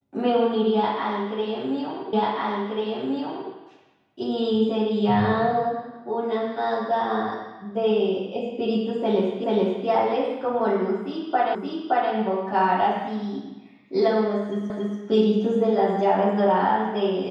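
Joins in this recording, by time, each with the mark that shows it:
2.13 repeat of the last 1.39 s
9.44 repeat of the last 0.43 s
11.55 repeat of the last 0.57 s
14.7 repeat of the last 0.28 s

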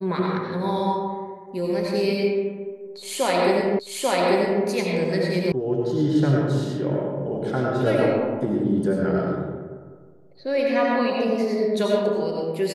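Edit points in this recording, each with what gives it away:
3.79 repeat of the last 0.84 s
5.52 sound cut off

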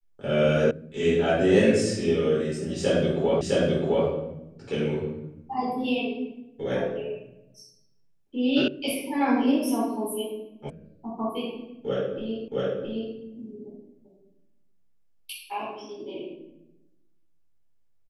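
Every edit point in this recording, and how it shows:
0.71 sound cut off
3.41 repeat of the last 0.66 s
8.68 sound cut off
10.7 sound cut off
12.48 repeat of the last 0.67 s

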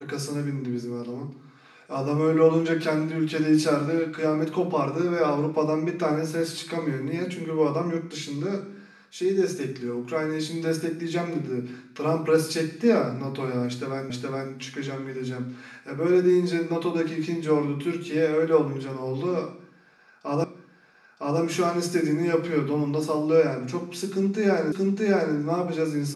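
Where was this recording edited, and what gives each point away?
14.1 repeat of the last 0.42 s
20.44 repeat of the last 0.96 s
24.72 repeat of the last 0.63 s

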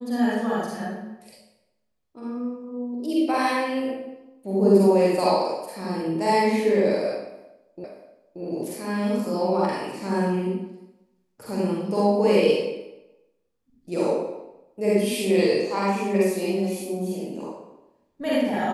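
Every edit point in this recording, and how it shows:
7.84 repeat of the last 0.58 s

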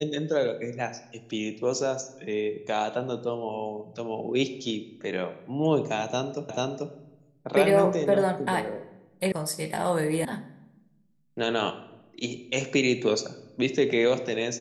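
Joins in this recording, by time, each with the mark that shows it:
6.49 repeat of the last 0.44 s
9.32 sound cut off
10.25 sound cut off

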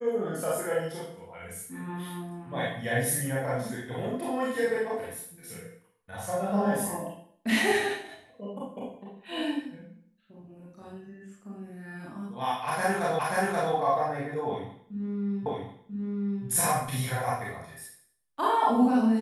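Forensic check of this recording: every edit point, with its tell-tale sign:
13.19 repeat of the last 0.53 s
15.46 repeat of the last 0.99 s

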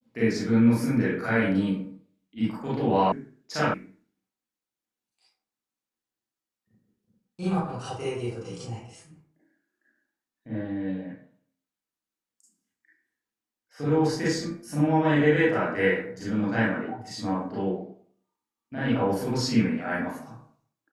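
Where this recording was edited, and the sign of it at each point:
3.12 sound cut off
3.74 sound cut off

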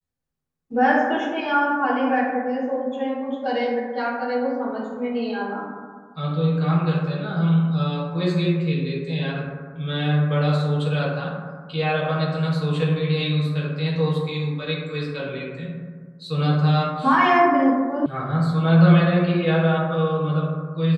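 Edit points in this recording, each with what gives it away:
18.06 sound cut off

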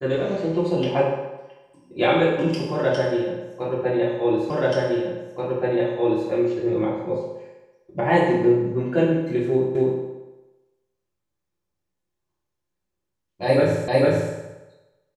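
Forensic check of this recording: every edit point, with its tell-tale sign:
4.5 repeat of the last 1.78 s
9.75 repeat of the last 0.26 s
13.88 repeat of the last 0.45 s

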